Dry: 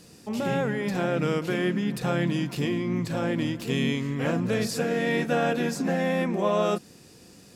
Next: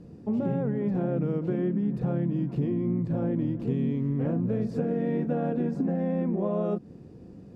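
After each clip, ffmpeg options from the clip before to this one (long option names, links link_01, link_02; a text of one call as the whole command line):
ffmpeg -i in.wav -af "lowpass=frequency=1000:poles=1,tiltshelf=frequency=760:gain=8.5,acompressor=threshold=-24dB:ratio=6" out.wav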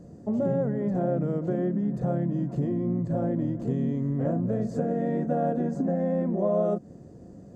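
ffmpeg -i in.wav -af "superequalizer=8b=2.24:12b=0.398:13b=0.631:15b=2.82" out.wav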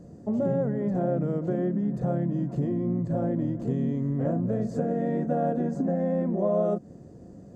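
ffmpeg -i in.wav -af anull out.wav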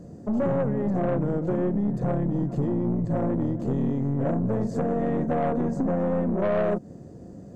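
ffmpeg -i in.wav -af "aeval=exprs='(tanh(15.8*val(0)+0.4)-tanh(0.4))/15.8':channel_layout=same,volume=5dB" out.wav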